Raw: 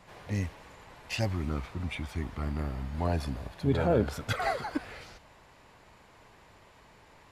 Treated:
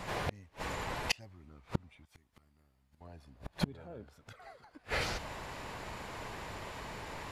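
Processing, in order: inverted gate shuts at -29 dBFS, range -36 dB; 2.05–3.01 s: pre-emphasis filter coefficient 0.8; trim +13 dB

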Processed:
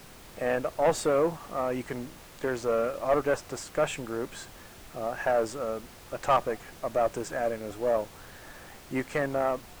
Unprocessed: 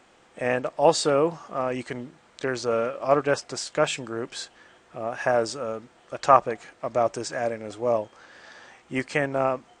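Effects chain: valve stage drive 16 dB, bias 0.3; peaking EQ 4.5 kHz -12 dB 1.2 oct; added noise pink -49 dBFS

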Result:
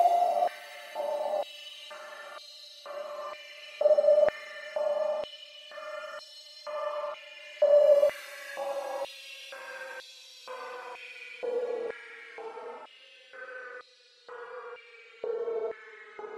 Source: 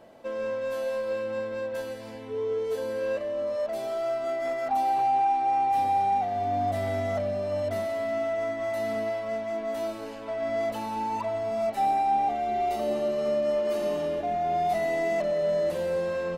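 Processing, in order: tape stop on the ending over 2.75 s; Paulstretch 8.2×, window 0.05 s, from 12.74 s; step-sequenced high-pass 2.1 Hz 640–4000 Hz; trim -4.5 dB

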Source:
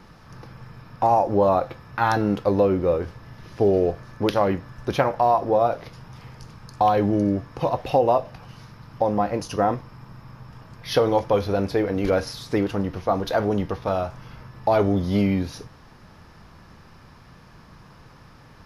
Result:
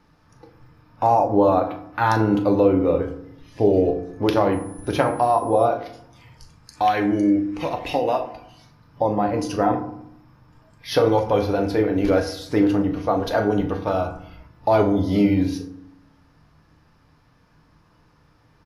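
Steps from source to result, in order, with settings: spectral noise reduction 11 dB; 6.67–8.33 s: graphic EQ 125/500/1000/2000/8000 Hz -10/-4/-5/+11/+5 dB; FDN reverb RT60 0.72 s, low-frequency decay 1.5×, high-frequency decay 0.5×, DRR 5.5 dB; 4.52–5.64 s: whistle 10 kHz -47 dBFS; doubling 39 ms -14 dB

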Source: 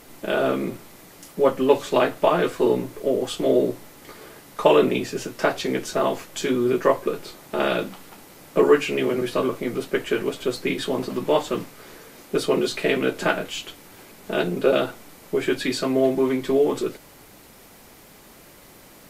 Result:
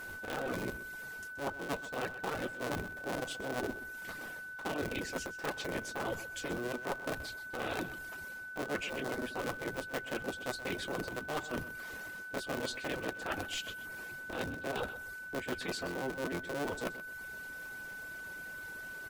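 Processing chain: cycle switcher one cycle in 3, inverted; reverb removal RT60 0.67 s; reverse; compression 12:1, threshold -30 dBFS, peak gain reduction 20 dB; reverse; feedback delay 127 ms, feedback 31%, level -14.5 dB; whistle 1.5 kHz -38 dBFS; trim -4.5 dB

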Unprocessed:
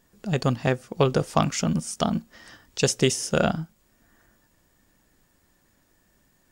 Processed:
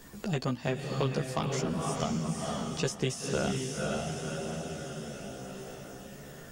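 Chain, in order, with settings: echo that smears into a reverb 502 ms, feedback 42%, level -4.5 dB; in parallel at -9 dB: one-sided clip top -20 dBFS; on the sum: chorus voices 2, 0.44 Hz, delay 14 ms, depth 1.7 ms; three bands compressed up and down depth 70%; trim -7.5 dB

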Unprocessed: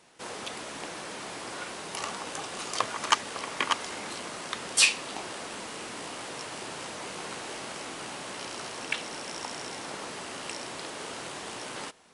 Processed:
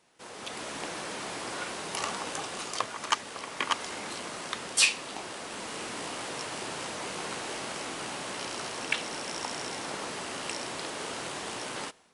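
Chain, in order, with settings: level rider gain up to 9.5 dB; trim -7.5 dB

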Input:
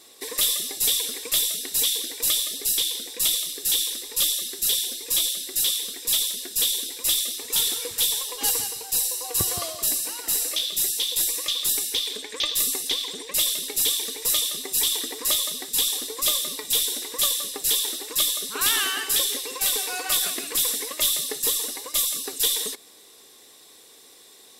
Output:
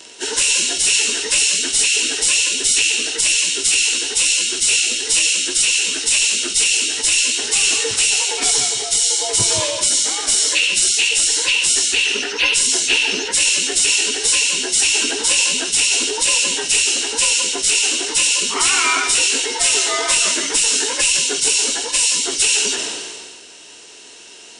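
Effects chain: frequency axis rescaled in octaves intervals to 90%; loudness maximiser +16.5 dB; decay stretcher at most 30 dB/s; trim -4.5 dB

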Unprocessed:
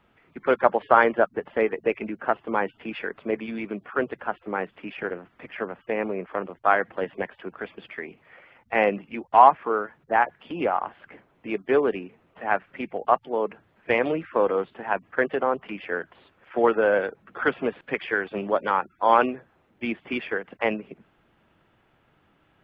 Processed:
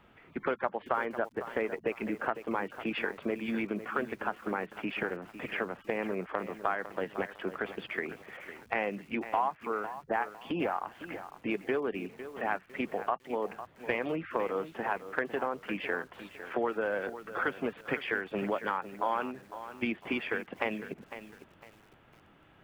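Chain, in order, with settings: dynamic bell 530 Hz, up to -3 dB, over -32 dBFS, Q 1.2; compression 4:1, threshold -33 dBFS, peak gain reduction 19 dB; bit-crushed delay 504 ms, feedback 35%, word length 9-bit, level -12 dB; trim +3 dB

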